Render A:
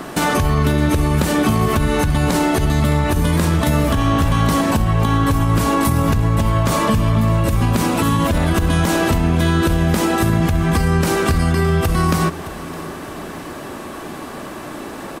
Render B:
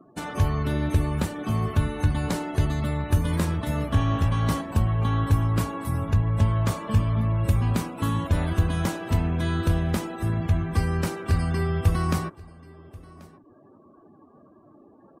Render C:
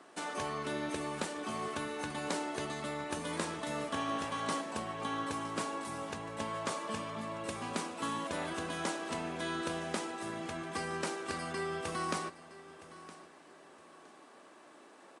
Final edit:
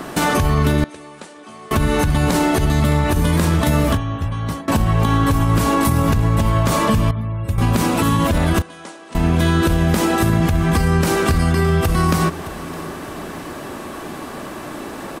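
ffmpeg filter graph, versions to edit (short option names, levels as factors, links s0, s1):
-filter_complex "[2:a]asplit=2[s0][s1];[1:a]asplit=2[s2][s3];[0:a]asplit=5[s4][s5][s6][s7][s8];[s4]atrim=end=0.842[s9];[s0]atrim=start=0.838:end=1.712[s10];[s5]atrim=start=1.708:end=3.972[s11];[s2]atrim=start=3.968:end=4.682[s12];[s6]atrim=start=4.678:end=7.112[s13];[s3]atrim=start=7.108:end=7.582[s14];[s7]atrim=start=7.578:end=8.622[s15];[s1]atrim=start=8.618:end=9.152[s16];[s8]atrim=start=9.148[s17];[s9][s10]acrossfade=d=0.004:c1=hsin:c2=hsin[s18];[s18][s11]acrossfade=d=0.004:c1=hsin:c2=hsin[s19];[s19][s12]acrossfade=d=0.004:c1=hsin:c2=hsin[s20];[s20][s13]acrossfade=d=0.004:c1=hsin:c2=hsin[s21];[s21][s14]acrossfade=d=0.004:c1=hsin:c2=hsin[s22];[s22][s15]acrossfade=d=0.004:c1=hsin:c2=hsin[s23];[s23][s16]acrossfade=d=0.004:c1=hsin:c2=hsin[s24];[s24][s17]acrossfade=d=0.004:c1=hsin:c2=hsin"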